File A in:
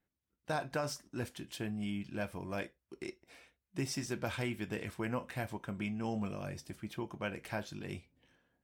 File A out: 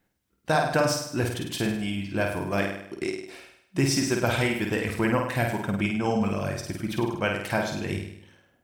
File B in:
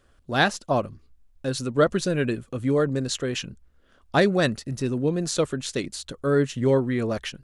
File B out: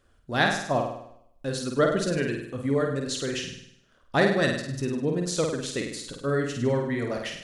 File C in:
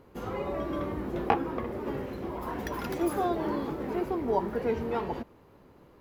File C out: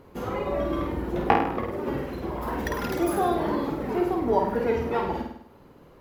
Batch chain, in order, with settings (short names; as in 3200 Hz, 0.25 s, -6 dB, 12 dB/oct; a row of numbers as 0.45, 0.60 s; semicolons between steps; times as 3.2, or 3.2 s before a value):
reverb removal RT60 0.63 s; dynamic EQ 1900 Hz, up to +5 dB, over -50 dBFS, Q 6.7; on a send: flutter echo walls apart 8.7 m, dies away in 0.72 s; on the sum: match loudness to -27 LUFS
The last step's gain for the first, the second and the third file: +12.0, -3.5, +4.5 dB